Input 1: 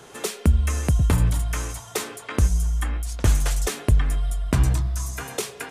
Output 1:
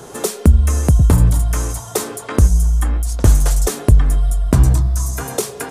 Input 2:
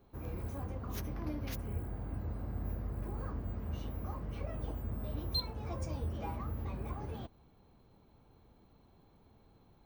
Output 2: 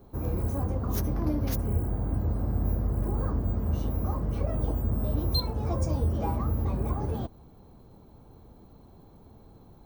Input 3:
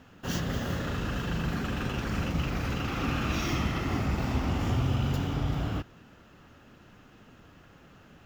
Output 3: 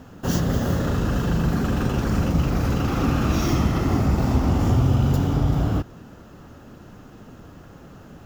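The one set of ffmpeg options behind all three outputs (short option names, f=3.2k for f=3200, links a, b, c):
-filter_complex "[0:a]equalizer=f=2.5k:w=0.77:g=-10.5,asplit=2[a][b];[b]acompressor=threshold=-33dB:ratio=6,volume=-3dB[c];[a][c]amix=inputs=2:normalize=0,volume=7dB"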